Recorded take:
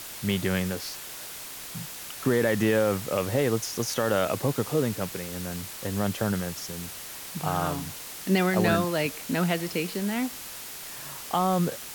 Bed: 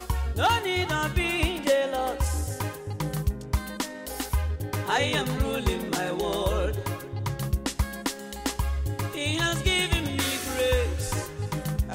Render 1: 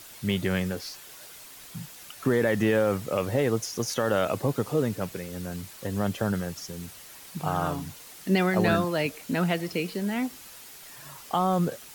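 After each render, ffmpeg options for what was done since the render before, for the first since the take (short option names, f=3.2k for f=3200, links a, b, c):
-af "afftdn=nr=8:nf=-40"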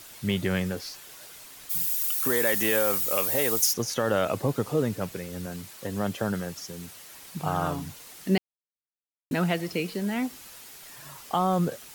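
-filter_complex "[0:a]asplit=3[a][b][c];[a]afade=t=out:st=1.69:d=0.02[d];[b]aemphasis=mode=production:type=riaa,afade=t=in:st=1.69:d=0.02,afade=t=out:st=3.72:d=0.02[e];[c]afade=t=in:st=3.72:d=0.02[f];[d][e][f]amix=inputs=3:normalize=0,asettb=1/sr,asplit=3[g][h][i];[g]atrim=end=5.464[j];[h]atrim=start=5.46:end=7.14,asetpts=PTS-STARTPTS,afade=t=in:d=0.004:c=qsin,afade=t=out:st=1.676:d=0.004:c=qsin,highpass=f=130:p=1[k];[i]atrim=start=7.136[l];[j][k]acrossfade=d=0.004:c1=hsin:c2=qsin[m];[m][l]acrossfade=d=0.004:c1=qsin:c2=hsin,asplit=3[n][o][p];[n]atrim=end=8.38,asetpts=PTS-STARTPTS,afade=t=out:st=8.376:d=0.004:c=hsin[q];[o]atrim=start=8.38:end=9.31,asetpts=PTS-STARTPTS,volume=0[r];[p]atrim=start=9.31,asetpts=PTS-STARTPTS,afade=t=in:d=0.004:c=hsin[s];[q][r][s]concat=n=3:v=0:a=1"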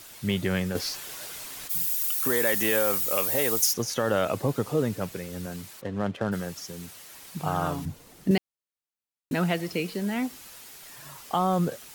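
-filter_complex "[0:a]asettb=1/sr,asplit=3[a][b][c];[a]atrim=end=0.754[d];[b]atrim=start=0.75:end=1.68,asetpts=PTS-STARTPTS,afade=t=in:d=0.004:c=qsin,afade=t=out:st=0.926:d=0.004:c=qsin,acontrast=82[e];[c]atrim=start=1.676[f];[d][e]acrossfade=d=0.004:c1=hsin:c2=qsin[g];[g][f]acrossfade=d=0.004:c1=qsin:c2=hsin,asplit=3[h][i][j];[h]afade=t=out:st=5.8:d=0.02[k];[i]adynamicsmooth=sensitivity=7.5:basefreq=1.4k,afade=t=in:st=5.8:d=0.02,afade=t=out:st=6.31:d=0.02[l];[j]afade=t=in:st=6.31:d=0.02[m];[k][l][m]amix=inputs=3:normalize=0,asettb=1/sr,asplit=3[n][o][p];[n]atrim=end=7.854[q];[o]atrim=start=7.85:end=8.31,asetpts=PTS-STARTPTS,afade=t=in:d=0.004:c=qsin,afade=t=out:st=0.456:d=0.004:c=qsin,tiltshelf=f=700:g=8.5[r];[p]atrim=start=8.306[s];[q][r]acrossfade=d=0.004:c1=hsin:c2=qsin[t];[t][s]acrossfade=d=0.004:c1=qsin:c2=hsin"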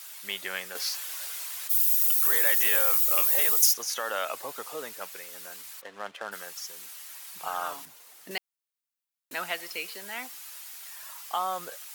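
-af "highpass=920,highshelf=f=11k:g=6"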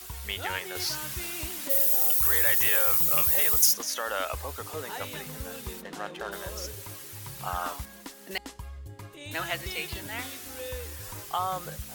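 -filter_complex "[1:a]volume=-14dB[a];[0:a][a]amix=inputs=2:normalize=0"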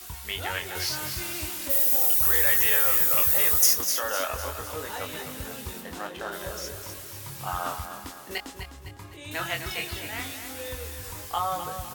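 -filter_complex "[0:a]asplit=2[a][b];[b]adelay=23,volume=-5dB[c];[a][c]amix=inputs=2:normalize=0,aecho=1:1:254|508|762|1016|1270:0.355|0.16|0.0718|0.0323|0.0145"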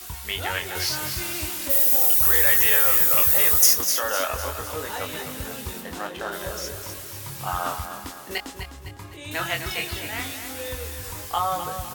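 -af "volume=3.5dB"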